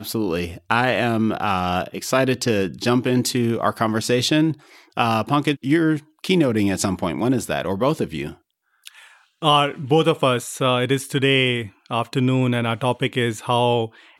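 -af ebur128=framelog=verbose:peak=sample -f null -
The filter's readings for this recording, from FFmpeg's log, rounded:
Integrated loudness:
  I:         -20.6 LUFS
  Threshold: -30.9 LUFS
Loudness range:
  LRA:         2.8 LU
  Threshold: -40.9 LUFS
  LRA low:   -22.7 LUFS
  LRA high:  -19.9 LUFS
Sample peak:
  Peak:       -2.4 dBFS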